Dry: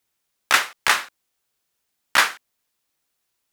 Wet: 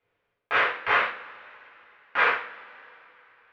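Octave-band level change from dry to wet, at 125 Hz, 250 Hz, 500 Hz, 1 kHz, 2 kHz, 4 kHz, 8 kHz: n/a, -3.0 dB, +4.0 dB, -1.5 dB, -2.5 dB, -11.5 dB, under -30 dB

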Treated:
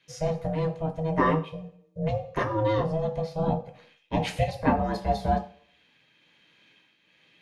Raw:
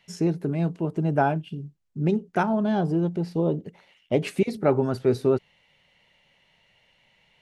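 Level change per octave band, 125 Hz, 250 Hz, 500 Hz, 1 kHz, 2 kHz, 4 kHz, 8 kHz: -2.0 dB, -5.5 dB, -3.0 dB, +1.5 dB, 0.0 dB, +2.0 dB, n/a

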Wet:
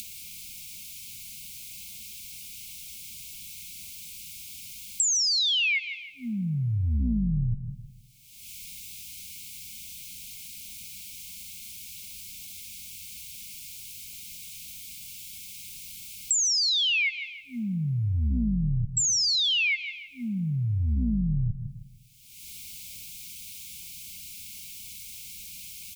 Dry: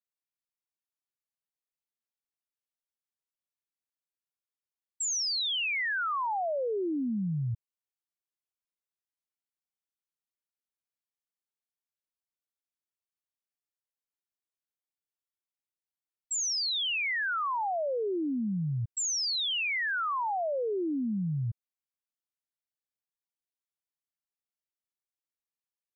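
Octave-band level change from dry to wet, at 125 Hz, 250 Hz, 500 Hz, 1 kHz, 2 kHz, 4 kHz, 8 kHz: +9.0 dB, +3.5 dB, under -30 dB, under -40 dB, +2.0 dB, +6.5 dB, n/a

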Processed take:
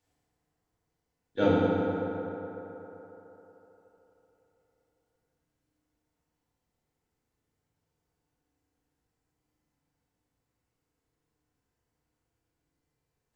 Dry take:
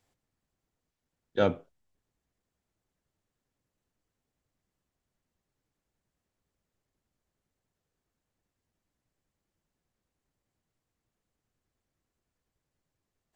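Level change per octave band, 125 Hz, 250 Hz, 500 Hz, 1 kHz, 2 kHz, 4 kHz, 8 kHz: +6.0 dB, +9.0 dB, +3.5 dB, +5.0 dB, +3.0 dB, 0.0 dB, n/a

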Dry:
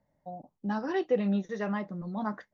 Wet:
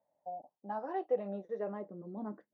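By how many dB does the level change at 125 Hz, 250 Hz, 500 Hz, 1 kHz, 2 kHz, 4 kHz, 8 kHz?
-14.0 dB, -12.5 dB, -4.5 dB, -3.5 dB, -14.5 dB, under -20 dB, n/a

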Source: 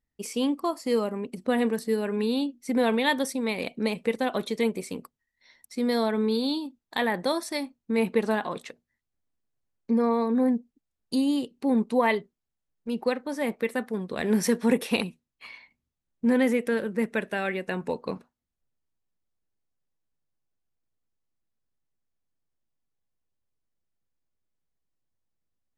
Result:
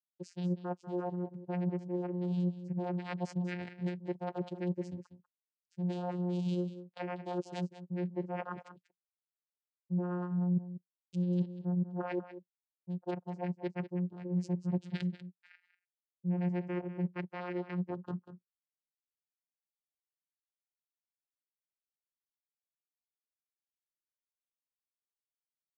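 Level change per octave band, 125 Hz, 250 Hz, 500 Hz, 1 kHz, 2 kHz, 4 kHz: +6.0, -9.0, -13.5, -12.0, -17.5, -20.5 dB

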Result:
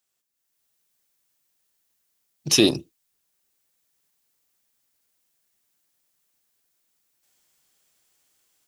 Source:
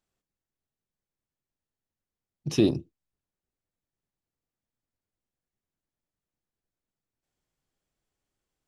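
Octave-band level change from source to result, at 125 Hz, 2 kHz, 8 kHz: -1.0, +13.5, +18.5 dB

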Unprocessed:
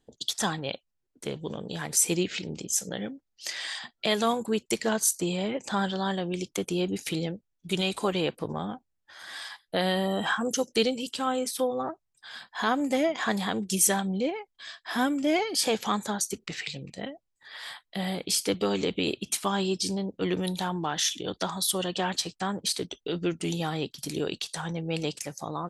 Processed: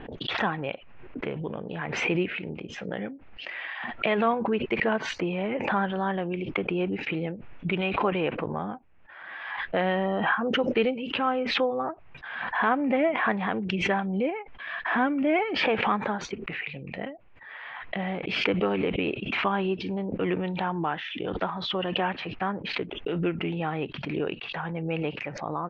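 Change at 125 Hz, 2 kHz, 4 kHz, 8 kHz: +1.0 dB, +5.5 dB, -3.5 dB, under -20 dB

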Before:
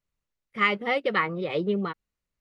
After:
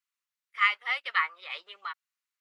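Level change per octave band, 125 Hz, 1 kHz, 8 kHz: under -40 dB, -3.0 dB, n/a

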